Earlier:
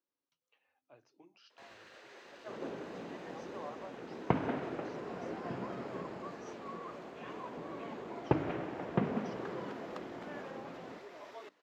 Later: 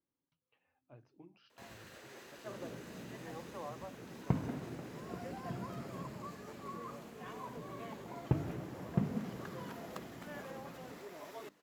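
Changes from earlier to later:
speech: add air absorption 260 m; second sound -11.0 dB; master: remove three-band isolator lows -15 dB, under 320 Hz, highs -20 dB, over 5900 Hz

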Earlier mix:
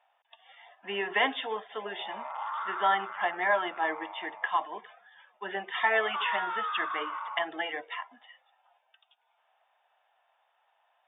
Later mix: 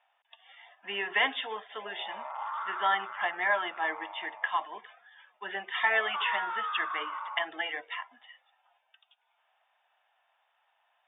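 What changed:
speech: add tilt shelf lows -6.5 dB, about 1200 Hz; master: add air absorption 180 m

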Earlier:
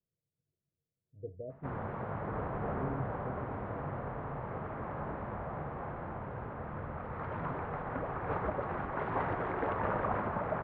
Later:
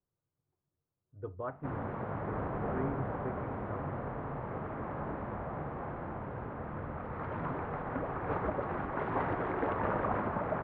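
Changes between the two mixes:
speech: remove rippled Chebyshev low-pass 680 Hz, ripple 6 dB; background: add bell 290 Hz +4 dB 0.83 oct

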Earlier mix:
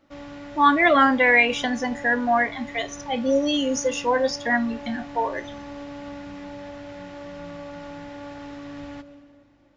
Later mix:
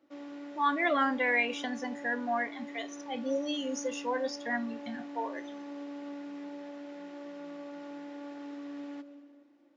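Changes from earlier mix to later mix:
speech -11.0 dB; background: add ladder high-pass 260 Hz, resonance 50%

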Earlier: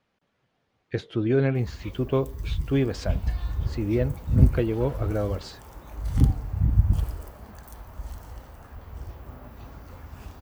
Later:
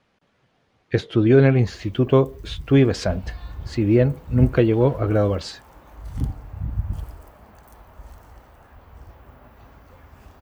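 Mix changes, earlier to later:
speech +8.0 dB; first sound -6.0 dB

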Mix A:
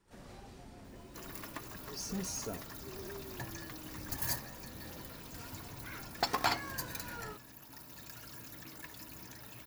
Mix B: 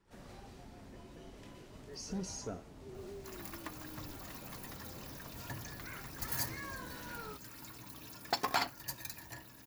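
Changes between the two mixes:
speech: add air absorption 69 m; second sound: entry +2.10 s; reverb: off

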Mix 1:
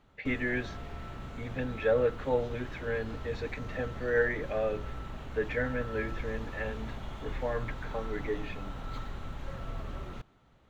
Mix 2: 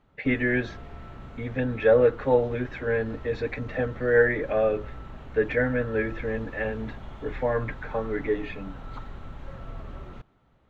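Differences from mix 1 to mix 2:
speech +8.0 dB; master: add high shelf 3900 Hz -10.5 dB

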